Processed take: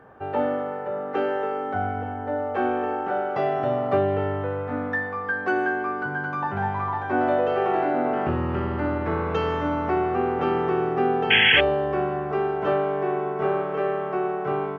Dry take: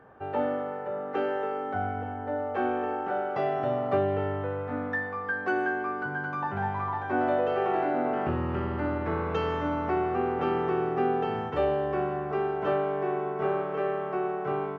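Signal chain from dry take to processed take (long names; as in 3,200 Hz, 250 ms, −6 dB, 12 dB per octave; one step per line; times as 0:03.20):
sound drawn into the spectrogram noise, 0:11.30–0:11.61, 1,500–3,400 Hz −21 dBFS
level +4 dB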